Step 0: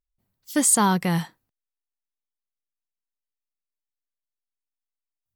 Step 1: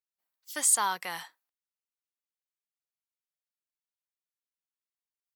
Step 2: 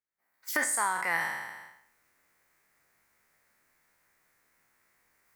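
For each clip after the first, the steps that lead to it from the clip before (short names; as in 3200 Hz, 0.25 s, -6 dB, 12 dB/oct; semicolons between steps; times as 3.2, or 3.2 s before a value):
HPF 860 Hz 12 dB/oct; gain -4.5 dB
spectral trails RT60 0.66 s; recorder AGC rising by 47 dB/s; resonant high shelf 2500 Hz -7 dB, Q 3; gain -3.5 dB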